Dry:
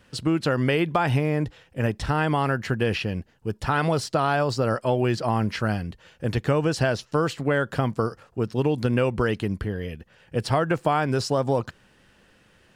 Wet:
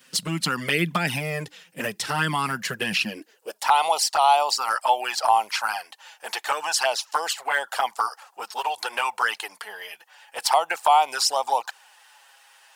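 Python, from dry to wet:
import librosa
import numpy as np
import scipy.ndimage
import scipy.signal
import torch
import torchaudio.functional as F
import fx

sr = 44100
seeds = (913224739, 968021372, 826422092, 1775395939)

y = fx.tilt_eq(x, sr, slope=4.5)
y = fx.filter_sweep_highpass(y, sr, from_hz=180.0, to_hz=830.0, start_s=2.98, end_s=3.65, q=5.6)
y = fx.env_flanger(y, sr, rest_ms=7.9, full_db=-16.0)
y = y * librosa.db_to_amplitude(2.0)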